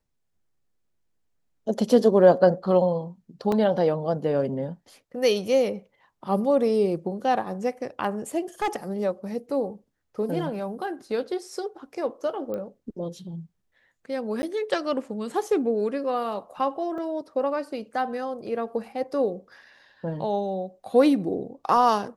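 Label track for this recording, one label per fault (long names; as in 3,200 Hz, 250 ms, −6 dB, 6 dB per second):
3.520000	3.520000	drop-out 2.2 ms
8.620000	8.760000	clipping −21.5 dBFS
12.540000	12.540000	click −21 dBFS
14.420000	14.430000	drop-out 10 ms
16.980000	16.980000	drop-out 2.8 ms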